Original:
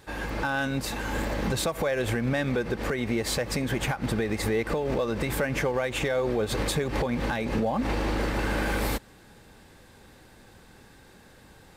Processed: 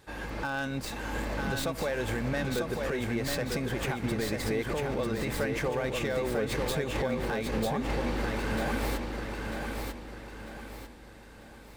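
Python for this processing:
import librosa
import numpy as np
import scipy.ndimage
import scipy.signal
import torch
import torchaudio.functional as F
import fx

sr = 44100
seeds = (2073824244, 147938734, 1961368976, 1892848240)

p1 = fx.tracing_dist(x, sr, depth_ms=0.064)
p2 = p1 + fx.echo_feedback(p1, sr, ms=946, feedback_pct=40, wet_db=-4.0, dry=0)
y = F.gain(torch.from_numpy(p2), -5.0).numpy()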